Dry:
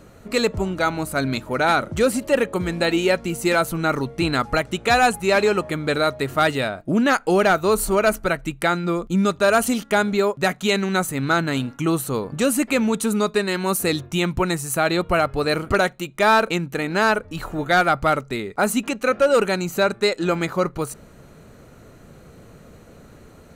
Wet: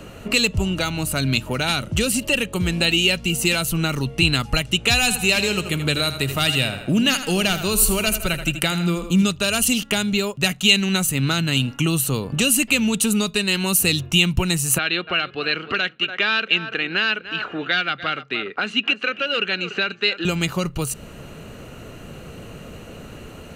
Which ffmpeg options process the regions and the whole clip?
ffmpeg -i in.wav -filter_complex "[0:a]asettb=1/sr,asplit=3[link_01][link_02][link_03];[link_01]atrim=end=4.984[link_04];[link_02]atrim=start=4.98:end=9.23,asetpts=PTS-STARTPTS,afade=type=in:duration=0.004:curve=qsin,afade=type=out:start_time=4.246:duration=0.004:curve=qsin,highshelf=frequency=12000:gain=5,aecho=1:1:80|160|240|320:0.266|0.114|0.0492|0.0212,atrim=end_sample=187425[link_05];[link_03]atrim=start=9.226[link_06];[link_04][link_05]acrossfade=duration=0.004:curve1=hsin:curve2=qsin[link_07];[link_07][link_06]acrossfade=duration=0.004:curve1=qsin:curve2=hsin,asettb=1/sr,asplit=3[link_08][link_09][link_10];[link_08]atrim=end=14.784[link_11];[link_09]atrim=start=14.78:end=20.25,asetpts=PTS-STARTPTS,afade=type=in:duration=0.004:curve=qsin,afade=type=out:start_time=5.466:duration=0.004:curve=qsin,asoftclip=type=hard:threshold=-9.5dB,highpass=340,equalizer=frequency=610:width_type=q:width=4:gain=-6,equalizer=frequency=910:width_type=q:width=4:gain=-7,equalizer=frequency=1600:width_type=q:width=4:gain=8,lowpass=frequency=3800:width=0.5412,lowpass=frequency=3800:width=1.3066,aecho=1:1:290:0.141,atrim=end_sample=241227[link_12];[link_10]atrim=start=20.246[link_13];[link_11][link_12]acrossfade=duration=0.004:curve1=hsin:curve2=qsin[link_14];[link_14][link_13]acrossfade=duration=0.004:curve1=qsin:curve2=hsin,equalizer=frequency=2800:width_type=o:width=0.23:gain=14.5,acrossover=split=180|3000[link_15][link_16][link_17];[link_16]acompressor=threshold=-33dB:ratio=6[link_18];[link_15][link_18][link_17]amix=inputs=3:normalize=0,volume=7.5dB" out.wav

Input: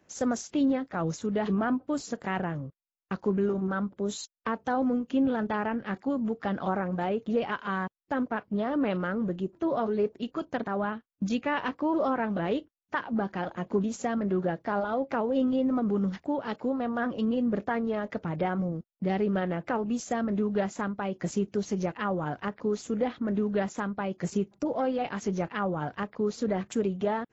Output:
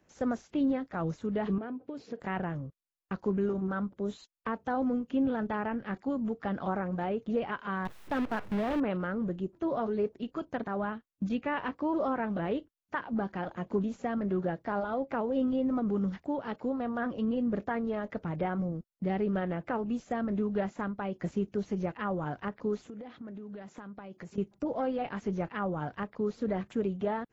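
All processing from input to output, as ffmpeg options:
ffmpeg -i in.wav -filter_complex "[0:a]asettb=1/sr,asplit=3[link_01][link_02][link_03];[link_01]atrim=end=1.584[link_04];[link_02]atrim=start=1.58:end=2.2,asetpts=PTS-STARTPTS,afade=type=in:duration=0.004:curve=qsin,afade=type=out:start_time=0.616:duration=0.004:curve=qsin,acompressor=threshold=-34dB:ratio=12:attack=3.2:release=140:knee=1:detection=peak,highpass=100,equalizer=frequency=240:width_type=q:width=4:gain=3,equalizer=frequency=450:width_type=q:width=4:gain=10,equalizer=frequency=1200:width_type=q:width=4:gain=-4,equalizer=frequency=2400:width_type=q:width=4:gain=4,lowpass=frequency=5300:width=0.5412,lowpass=frequency=5300:width=1.3066[link_05];[link_03]atrim=start=2.196[link_06];[link_04][link_05]acrossfade=duration=0.004:curve1=hsin:curve2=qsin[link_07];[link_07][link_06]acrossfade=duration=0.004:curve1=qsin:curve2=hsin,asettb=1/sr,asplit=3[link_08][link_09][link_10];[link_08]atrim=end=7.854[link_11];[link_09]atrim=start=7.85:end=8.8,asetpts=PTS-STARTPTS,afade=type=in:duration=0.004:curve=qsin,afade=type=out:start_time=0.946:duration=0.004:curve=qsin,aeval=exprs='val(0)+0.5*0.0158*sgn(val(0))':channel_layout=same,acrusher=bits=6:dc=4:mix=0:aa=0.000001[link_12];[link_10]atrim=start=8.796[link_13];[link_11][link_12]acrossfade=duration=0.004:curve1=hsin:curve2=qsin[link_14];[link_14][link_13]acrossfade=duration=0.004:curve1=qsin:curve2=hsin,asettb=1/sr,asplit=3[link_15][link_16][link_17];[link_15]atrim=end=22.864[link_18];[link_16]atrim=start=22.86:end=24.38,asetpts=PTS-STARTPTS,afade=type=in:duration=0.004:curve=qsin,afade=type=out:start_time=1.516:duration=0.004:curve=qsin,highpass=95,acompressor=threshold=-37dB:ratio=10:attack=3.2:release=140:knee=1:detection=peak[link_19];[link_17]atrim=start=24.376[link_20];[link_18][link_19]acrossfade=duration=0.004:curve1=hsin:curve2=qsin[link_21];[link_21][link_20]acrossfade=duration=0.004:curve1=qsin:curve2=hsin,acrossover=split=3200[link_22][link_23];[link_23]acompressor=threshold=-59dB:ratio=4:attack=1:release=60[link_24];[link_22][link_24]amix=inputs=2:normalize=0,lowshelf=frequency=73:gain=8,volume=-3.5dB" out.wav

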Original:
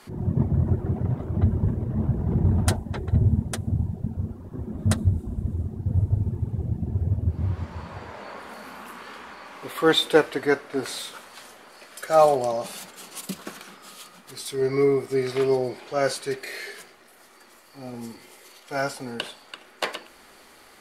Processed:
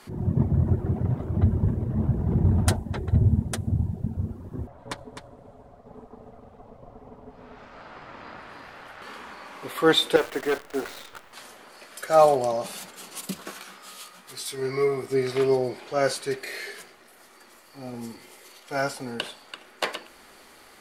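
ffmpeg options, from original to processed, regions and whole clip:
ffmpeg -i in.wav -filter_complex "[0:a]asettb=1/sr,asplit=3[link_01][link_02][link_03];[link_01]atrim=end=4.674[link_04];[link_02]atrim=start=4.67:end=9.02,asetpts=PTS-STARTPTS,afade=type=in:duration=0.004:curve=qsin,afade=type=out:start_time=4.346:duration=0.004:curve=qsin,acrossover=split=330 5900:gain=0.0631 1 0.224[link_05][link_06][link_07];[link_05][link_06][link_07]amix=inputs=3:normalize=0,aeval=exprs='val(0)*sin(2*PI*340*n/s)':channel_layout=same,aecho=1:1:256:0.398,atrim=end_sample=191835[link_08];[link_03]atrim=start=9.016[link_09];[link_04][link_08]acrossfade=duration=0.004:curve1=hsin:curve2=qsin[link_10];[link_10][link_09]acrossfade=duration=0.004:curve1=qsin:curve2=hsin,asettb=1/sr,asplit=3[link_11][link_12][link_13];[link_11]atrim=end=10.164[link_14];[link_12]atrim=start=10.16:end=11.33,asetpts=PTS-STARTPTS,afade=type=in:duration=0.004:curve=qsin,afade=type=out:start_time=1.166:duration=0.004:curve=qsin,highpass=270,lowpass=2400,acrusher=bits=7:dc=4:mix=0:aa=0.000001,asoftclip=type=hard:threshold=-19.5dB[link_15];[link_13]atrim=start=11.326[link_16];[link_14][link_15]acrossfade=duration=0.004:curve1=hsin:curve2=qsin[link_17];[link_17][link_16]acrossfade=duration=0.004:curve1=qsin:curve2=hsin,asettb=1/sr,asplit=3[link_18][link_19][link_20];[link_18]atrim=end=13.474[link_21];[link_19]atrim=start=13.47:end=15.03,asetpts=PTS-STARTPTS,afade=type=in:duration=0.004:curve=qsin,afade=type=out:start_time=1.556:duration=0.004:curve=qsin,lowshelf=frequency=360:gain=-8.5,asplit=2[link_22][link_23];[link_23]adelay=16,volume=-4dB[link_24];[link_22][link_24]amix=inputs=2:normalize=0,atrim=end_sample=68796[link_25];[link_20]atrim=start=15.026[link_26];[link_21][link_25]acrossfade=duration=0.004:curve1=hsin:curve2=qsin[link_27];[link_27][link_26]acrossfade=duration=0.004:curve1=qsin:curve2=hsin" out.wav

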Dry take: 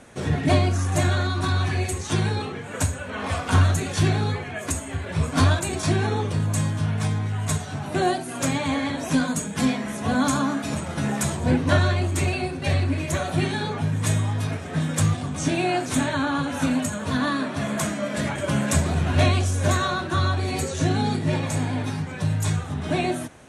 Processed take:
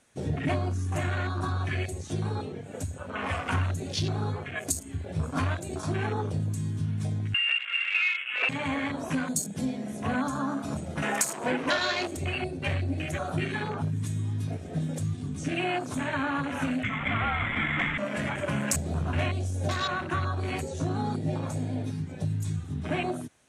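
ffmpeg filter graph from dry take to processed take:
ffmpeg -i in.wav -filter_complex "[0:a]asettb=1/sr,asplit=3[link_01][link_02][link_03];[link_01]atrim=end=7.344[link_04];[link_02]atrim=start=7.34:end=8.49,asetpts=PTS-STARTPTS,afade=type=in:duration=0.004:curve=qsin,afade=type=out:start_time=1.146:duration=0.004:curve=qsin,lowpass=frequency=2500:width_type=q:width=0.5098,lowpass=frequency=2500:width_type=q:width=0.6013,lowpass=frequency=2500:width_type=q:width=0.9,lowpass=frequency=2500:width_type=q:width=2.563,afreqshift=-2900,equalizer=frequency=520:width=0.83:gain=13[link_05];[link_03]atrim=start=8.486[link_06];[link_04][link_05]acrossfade=duration=0.004:curve1=hsin:curve2=qsin[link_07];[link_07][link_06]acrossfade=duration=0.004:curve1=qsin:curve2=hsin,asettb=1/sr,asplit=3[link_08][link_09][link_10];[link_08]atrim=end=11.024[link_11];[link_09]atrim=start=11.02:end=12.17,asetpts=PTS-STARTPTS,afade=type=in:duration=0.004:curve=qsin,afade=type=out:start_time=1.146:duration=0.004:curve=qsin,highpass=360,acontrast=71[link_12];[link_10]atrim=start=12.166[link_13];[link_11][link_12]acrossfade=duration=0.004:curve1=hsin:curve2=qsin[link_14];[link_14][link_13]acrossfade=duration=0.004:curve1=qsin:curve2=hsin,asettb=1/sr,asplit=3[link_15][link_16][link_17];[link_15]atrim=end=16.834[link_18];[link_16]atrim=start=16.83:end=17.98,asetpts=PTS-STARTPTS,afade=type=in:duration=0.004:curve=qsin,afade=type=out:start_time=1.146:duration=0.004:curve=qsin,lowpass=frequency=2500:width_type=q:width=7.1,afreqshift=-360[link_19];[link_17]atrim=start=17.976[link_20];[link_18][link_19]acrossfade=duration=0.004:curve1=hsin:curve2=qsin[link_21];[link_21][link_20]acrossfade=duration=0.004:curve1=qsin:curve2=hsin,highshelf=frequency=2000:gain=11.5,acompressor=threshold=-20dB:ratio=4,afwtdn=0.0447,volume=-4dB" out.wav

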